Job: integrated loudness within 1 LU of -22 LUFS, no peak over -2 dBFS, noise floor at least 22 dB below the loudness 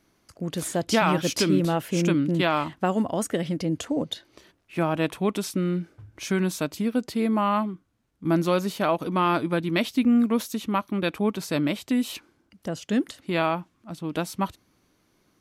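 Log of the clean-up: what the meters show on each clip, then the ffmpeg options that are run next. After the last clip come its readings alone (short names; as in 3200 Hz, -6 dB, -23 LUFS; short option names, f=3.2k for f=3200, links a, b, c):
loudness -25.5 LUFS; peak -9.0 dBFS; loudness target -22.0 LUFS
-> -af "volume=3.5dB"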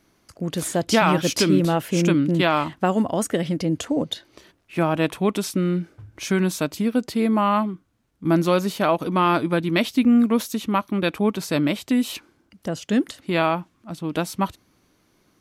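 loudness -22.0 LUFS; peak -5.5 dBFS; noise floor -64 dBFS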